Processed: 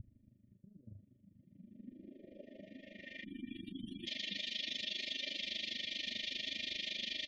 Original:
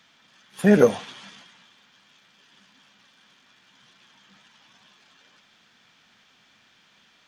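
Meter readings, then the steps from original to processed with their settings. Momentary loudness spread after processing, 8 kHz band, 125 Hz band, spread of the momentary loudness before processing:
17 LU, −10.0 dB, −23.0 dB, 12 LU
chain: gain on a spectral selection 0:03.23–0:04.07, 360–9,100 Hz −24 dB
high-shelf EQ 10,000 Hz +7 dB
gate on every frequency bin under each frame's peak −25 dB strong
comb filter 3.3 ms, depth 98%
compressor whose output falls as the input rises −42 dBFS, ratio −1
brickwall limiter −45.5 dBFS, peak gain reduction 26 dB
amplitude modulation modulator 25 Hz, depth 70%
pitch vibrato 0.49 Hz 11 cents
low-pass filter sweep 110 Hz → 4,000 Hz, 0:01.32–0:03.73
linear-phase brick-wall band-stop 660–1,800 Hz
level +12.5 dB

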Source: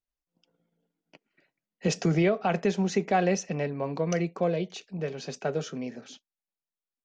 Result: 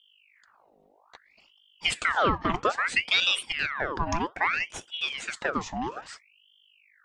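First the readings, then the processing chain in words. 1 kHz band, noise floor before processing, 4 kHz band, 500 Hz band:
+4.0 dB, below −85 dBFS, +13.5 dB, −6.5 dB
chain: hum with harmonics 50 Hz, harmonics 6, −60 dBFS −6 dB per octave
in parallel at −2 dB: downward compressor, threshold −34 dBFS, peak gain reduction 14 dB
on the sum: low shelf with overshoot 180 Hz −7 dB, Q 1.5
ring modulator whose carrier an LFO sweeps 1,800 Hz, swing 75%, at 0.61 Hz
level +1 dB

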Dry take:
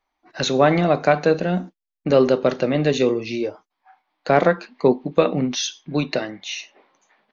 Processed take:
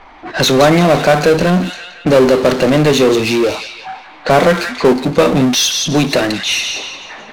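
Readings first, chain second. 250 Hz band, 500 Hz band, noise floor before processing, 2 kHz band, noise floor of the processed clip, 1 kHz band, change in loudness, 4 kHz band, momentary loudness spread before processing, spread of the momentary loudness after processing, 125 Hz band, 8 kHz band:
+8.5 dB, +7.0 dB, −81 dBFS, +10.0 dB, −37 dBFS, +7.5 dB, +8.0 dB, +13.0 dB, 12 LU, 14 LU, +8.5 dB, can't be measured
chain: delay with a high-pass on its return 173 ms, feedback 31%, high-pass 2,900 Hz, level −6.5 dB
power curve on the samples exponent 0.5
low-pass that shuts in the quiet parts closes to 2,500 Hz, open at −13 dBFS
level +2 dB

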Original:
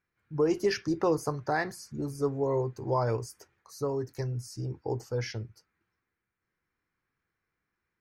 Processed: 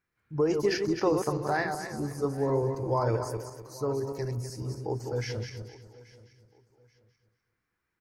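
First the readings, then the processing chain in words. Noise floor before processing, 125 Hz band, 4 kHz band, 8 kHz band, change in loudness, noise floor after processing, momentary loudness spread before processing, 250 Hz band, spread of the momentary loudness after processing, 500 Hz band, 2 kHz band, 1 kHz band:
−85 dBFS, +1.5 dB, +1.5 dB, +1.5 dB, +1.0 dB, −83 dBFS, 10 LU, +1.5 dB, 11 LU, +1.5 dB, +1.5 dB, +1.5 dB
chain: feedback delay that plays each chunk backwards 125 ms, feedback 53%, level −5.5 dB
on a send: repeating echo 832 ms, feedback 29%, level −20.5 dB

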